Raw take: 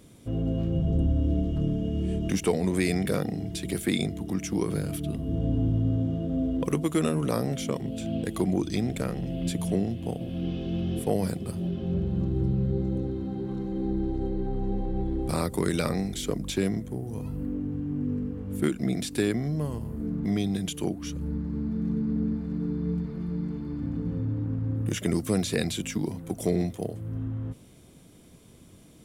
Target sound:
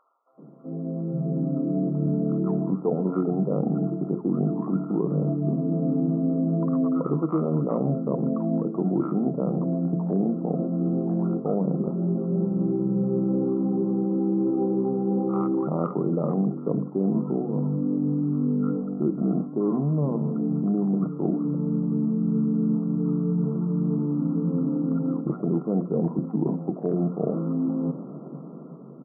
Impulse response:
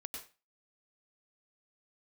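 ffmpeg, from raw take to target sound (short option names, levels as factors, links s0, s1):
-filter_complex "[0:a]asplit=2[s0][s1];[1:a]atrim=start_sample=2205[s2];[s1][s2]afir=irnorm=-1:irlink=0,volume=0.188[s3];[s0][s3]amix=inputs=2:normalize=0,afftfilt=real='re*between(b*sr/4096,130,1400)':imag='im*between(b*sr/4096,130,1400)':win_size=4096:overlap=0.75,areverse,acompressor=threshold=0.00891:ratio=5,areverse,aemphasis=mode=production:type=50fm,bandreject=f=60:t=h:w=6,bandreject=f=120:t=h:w=6,bandreject=f=180:t=h:w=6,bandreject=f=240:t=h:w=6,bandreject=f=300:t=h:w=6,bandreject=f=360:t=h:w=6,bandreject=f=420:t=h:w=6,bandreject=f=480:t=h:w=6,bandreject=f=540:t=h:w=6,acrossover=split=980[s4][s5];[s4]adelay=380[s6];[s6][s5]amix=inputs=2:normalize=0,dynaudnorm=f=230:g=11:m=3.35,volume=2.66"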